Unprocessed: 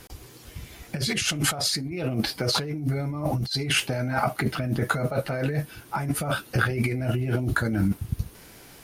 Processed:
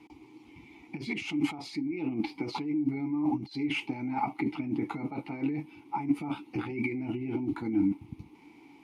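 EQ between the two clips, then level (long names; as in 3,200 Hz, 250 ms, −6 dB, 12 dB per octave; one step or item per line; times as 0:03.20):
formant filter u
+7.0 dB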